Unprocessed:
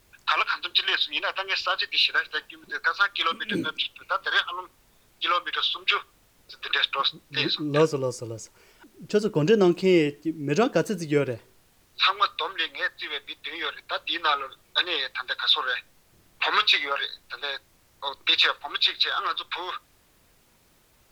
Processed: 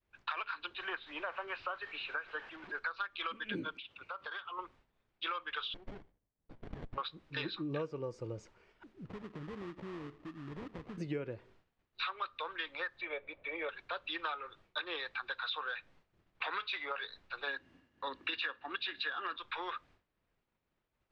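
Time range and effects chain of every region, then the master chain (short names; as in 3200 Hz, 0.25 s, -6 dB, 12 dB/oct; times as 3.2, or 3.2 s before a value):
0.75–2.79 switching spikes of -18.5 dBFS + LPF 1500 Hz
3.74–4.59 HPF 66 Hz + compressor 5:1, threshold -35 dBFS
5.74–6.98 bell 1100 Hz -9.5 dB 2.7 oct + compressor 4:1, threshold -35 dBFS + running maximum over 33 samples
9.05–10.98 fixed phaser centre 2500 Hz, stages 6 + sample-rate reducer 1500 Hz, jitter 20% + compressor 5:1, threshold -39 dBFS
13.01–13.69 tape spacing loss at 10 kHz 35 dB + small resonant body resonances 570/2300 Hz, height 17 dB, ringing for 30 ms + mismatched tape noise reduction encoder only
17.47–19.37 HPF 45 Hz + small resonant body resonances 260/1700/2800 Hz, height 15 dB, ringing for 40 ms
whole clip: LPF 2700 Hz 12 dB/oct; expander -52 dBFS; compressor 6:1, threshold -31 dBFS; gain -4.5 dB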